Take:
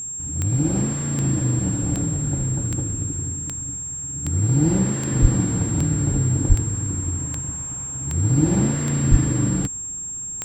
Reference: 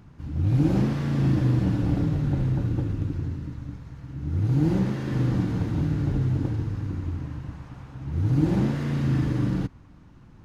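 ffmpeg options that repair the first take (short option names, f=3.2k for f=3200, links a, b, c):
-filter_complex "[0:a]adeclick=t=4,bandreject=f=7.5k:w=30,asplit=3[a][b][c];[a]afade=t=out:st=5.21:d=0.02[d];[b]highpass=f=140:w=0.5412,highpass=f=140:w=1.3066,afade=t=in:st=5.21:d=0.02,afade=t=out:st=5.33:d=0.02[e];[c]afade=t=in:st=5.33:d=0.02[f];[d][e][f]amix=inputs=3:normalize=0,asplit=3[g][h][i];[g]afade=t=out:st=6.48:d=0.02[j];[h]highpass=f=140:w=0.5412,highpass=f=140:w=1.3066,afade=t=in:st=6.48:d=0.02,afade=t=out:st=6.6:d=0.02[k];[i]afade=t=in:st=6.6:d=0.02[l];[j][k][l]amix=inputs=3:normalize=0,asplit=3[m][n][o];[m]afade=t=out:st=9.1:d=0.02[p];[n]highpass=f=140:w=0.5412,highpass=f=140:w=1.3066,afade=t=in:st=9.1:d=0.02,afade=t=out:st=9.22:d=0.02[q];[o]afade=t=in:st=9.22:d=0.02[r];[p][q][r]amix=inputs=3:normalize=0,asetnsamples=n=441:p=0,asendcmd='4.25 volume volume -3.5dB',volume=0dB"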